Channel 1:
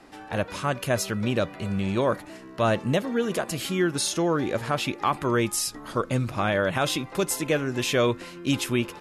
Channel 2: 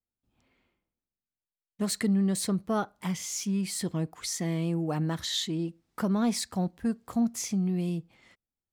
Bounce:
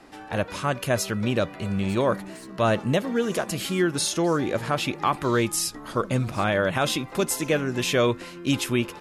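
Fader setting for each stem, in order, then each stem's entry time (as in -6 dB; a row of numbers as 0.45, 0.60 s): +1.0, -15.0 dB; 0.00, 0.00 s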